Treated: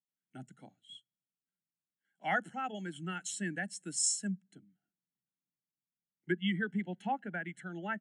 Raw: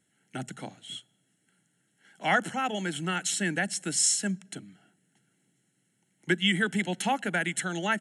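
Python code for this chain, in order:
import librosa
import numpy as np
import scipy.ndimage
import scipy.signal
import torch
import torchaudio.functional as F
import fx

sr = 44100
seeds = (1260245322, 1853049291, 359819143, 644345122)

y = fx.high_shelf(x, sr, hz=4500.0, db=fx.steps((0.0, 3.5), (4.27, -3.5), (6.31, -10.0)))
y = fx.spectral_expand(y, sr, expansion=1.5)
y = F.gain(torch.from_numpy(y), -8.0).numpy()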